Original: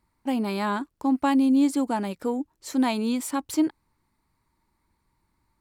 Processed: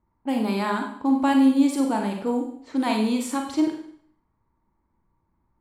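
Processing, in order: level-controlled noise filter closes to 1.1 kHz, open at -23 dBFS; Schroeder reverb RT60 0.6 s, combs from 33 ms, DRR 2 dB

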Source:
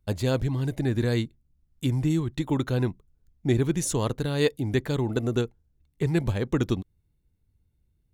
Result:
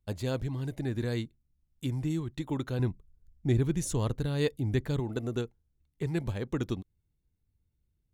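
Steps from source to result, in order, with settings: 2.79–5.00 s: bass shelf 130 Hz +11 dB; trim -7 dB

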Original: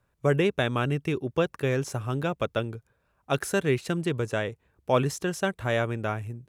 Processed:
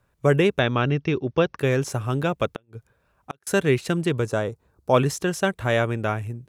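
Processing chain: 0.59–1.59 s: steep low-pass 6.1 kHz 72 dB/octave; 2.53–3.47 s: inverted gate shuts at -21 dBFS, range -39 dB; 4.30–4.94 s: high-order bell 2.4 kHz -9 dB 1.2 oct; trim +4.5 dB

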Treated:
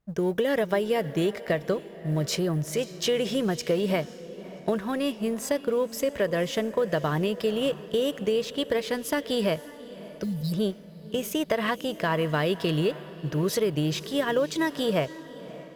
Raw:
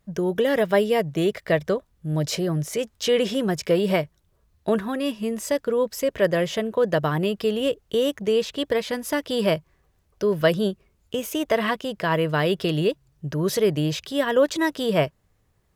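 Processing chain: companding laws mixed up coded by A; spectral selection erased 10.24–10.52 s, 290–3700 Hz; compression, threshold -21 dBFS, peak gain reduction 7.5 dB; on a send: echo that smears into a reverb 565 ms, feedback 46%, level -15.5 dB; on the sum: tape noise reduction on one side only decoder only

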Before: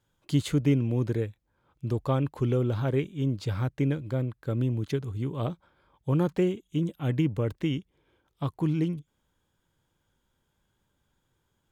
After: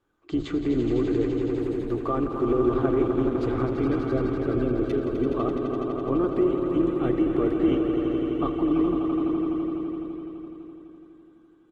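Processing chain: octave divider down 2 oct, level -4 dB; tone controls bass -7 dB, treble -12 dB; hum notches 50/100/150 Hz; comb 2.6 ms, depth 37%; small resonant body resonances 320/1200 Hz, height 12 dB, ringing for 20 ms; peak limiter -17.5 dBFS, peak gain reduction 10.5 dB; dynamic bell 650 Hz, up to +7 dB, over -53 dBFS, Q 5.8; echo with a slow build-up 84 ms, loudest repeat 5, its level -8.5 dB; Opus 16 kbps 48 kHz

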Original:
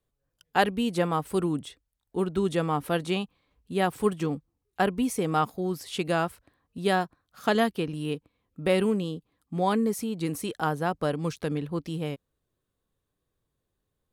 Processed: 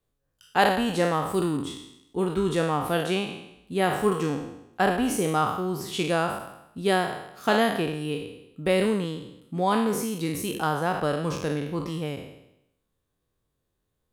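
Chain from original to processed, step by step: spectral sustain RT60 0.83 s

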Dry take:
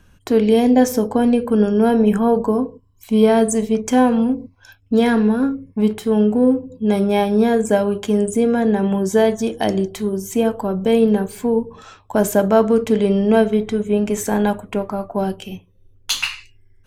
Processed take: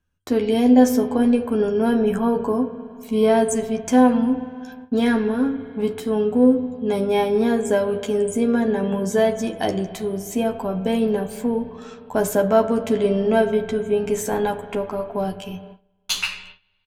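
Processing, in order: spring tank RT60 2.8 s, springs 32/51 ms, chirp 40 ms, DRR 12 dB; gate with hold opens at -29 dBFS; doubling 12 ms -5 dB; trim -4 dB

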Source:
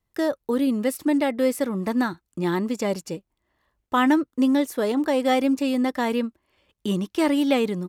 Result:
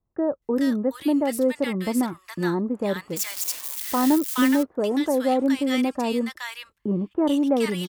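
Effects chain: 2.74–4.21 s: zero-crossing glitches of -19.5 dBFS; bands offset in time lows, highs 420 ms, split 1.2 kHz

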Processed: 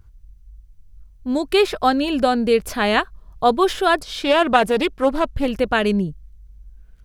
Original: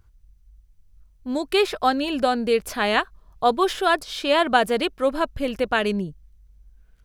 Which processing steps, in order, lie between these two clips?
bass shelf 260 Hz +6.5 dB; 3.98–5.46 s: loudspeaker Doppler distortion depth 0.31 ms; trim +2 dB

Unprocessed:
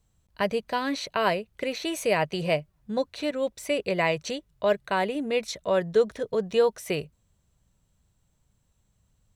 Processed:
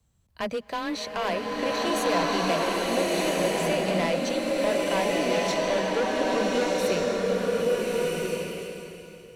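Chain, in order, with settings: frequency shift +18 Hz; saturation -23.5 dBFS, distortion -9 dB; swelling reverb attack 1450 ms, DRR -5 dB

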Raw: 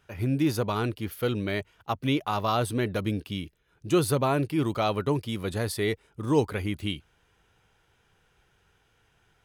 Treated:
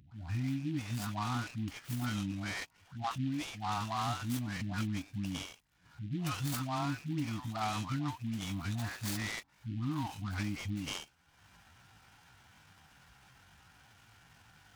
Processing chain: elliptic band-stop 290–720 Hz, stop band 50 dB; compression 8:1, threshold -29 dBFS, peak gain reduction 8.5 dB; phase dispersion highs, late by 112 ms, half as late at 750 Hz; tempo 0.64×; high-pass 73 Hz; upward compressor, threshold -48 dBFS; delay time shaken by noise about 2.6 kHz, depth 0.041 ms; trim -2 dB

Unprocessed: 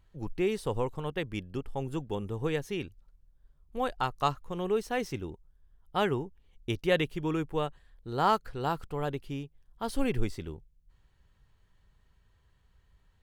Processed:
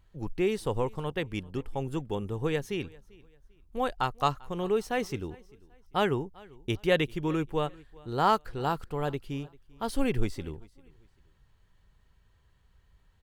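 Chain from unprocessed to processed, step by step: feedback delay 394 ms, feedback 31%, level -24 dB; trim +1.5 dB

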